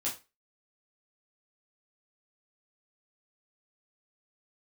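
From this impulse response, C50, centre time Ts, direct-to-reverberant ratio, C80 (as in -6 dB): 9.5 dB, 25 ms, -5.5 dB, 16.5 dB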